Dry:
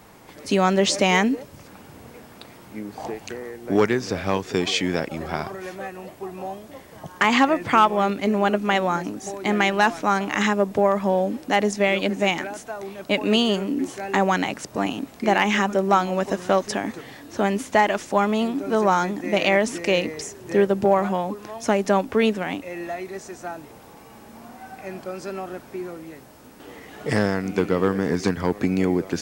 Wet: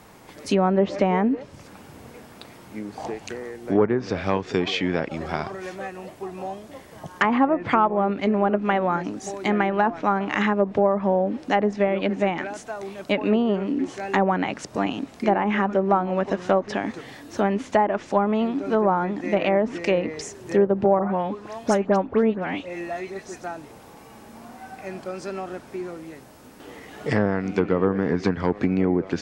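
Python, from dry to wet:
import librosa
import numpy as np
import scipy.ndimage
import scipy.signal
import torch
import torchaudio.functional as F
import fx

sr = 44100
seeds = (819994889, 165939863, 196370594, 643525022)

y = fx.env_lowpass_down(x, sr, base_hz=1000.0, full_db=-14.5)
y = fx.dispersion(y, sr, late='highs', ms=87.0, hz=2500.0, at=(20.99, 23.44))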